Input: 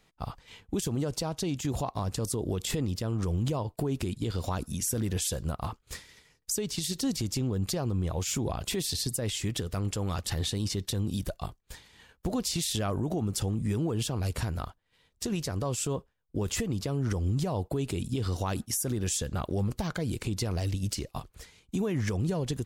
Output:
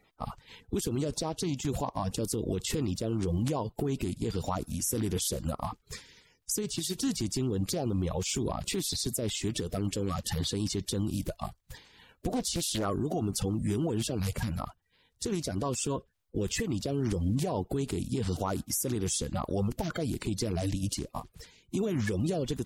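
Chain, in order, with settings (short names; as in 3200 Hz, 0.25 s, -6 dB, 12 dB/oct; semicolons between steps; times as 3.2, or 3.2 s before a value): bin magnitudes rounded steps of 30 dB; 12.32–12.85 Doppler distortion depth 0.65 ms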